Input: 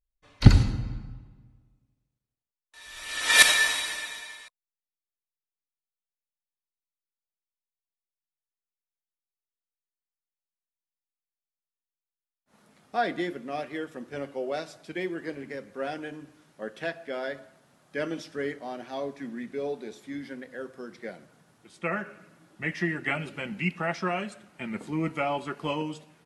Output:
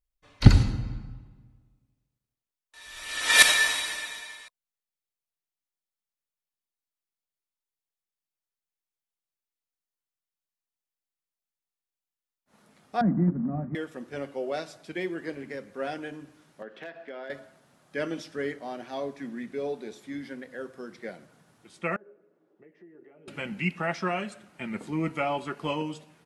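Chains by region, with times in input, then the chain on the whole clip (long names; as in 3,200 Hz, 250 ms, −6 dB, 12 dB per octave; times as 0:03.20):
0:13.01–0:13.75: low shelf with overshoot 290 Hz +13 dB, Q 3 + floating-point word with a short mantissa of 2 bits + Gaussian smoothing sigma 7.7 samples
0:16.62–0:17.30: three-way crossover with the lows and the highs turned down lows −14 dB, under 190 Hz, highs −22 dB, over 4,100 Hz + downward compressor 4 to 1, threshold −37 dBFS + hard clipping −31.5 dBFS
0:21.96–0:23.28: downward compressor, threshold −37 dBFS + resonant band-pass 420 Hz, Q 4.6 + one half of a high-frequency compander encoder only
whole clip: no processing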